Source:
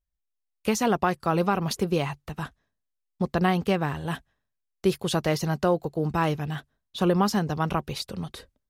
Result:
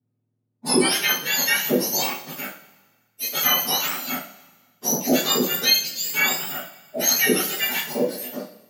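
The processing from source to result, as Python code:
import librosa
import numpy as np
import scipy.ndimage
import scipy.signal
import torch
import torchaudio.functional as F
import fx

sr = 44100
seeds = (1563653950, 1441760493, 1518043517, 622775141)

y = fx.octave_mirror(x, sr, pivot_hz=1500.0)
y = fx.rev_double_slope(y, sr, seeds[0], early_s=0.38, late_s=1.5, knee_db=-18, drr_db=-7.0)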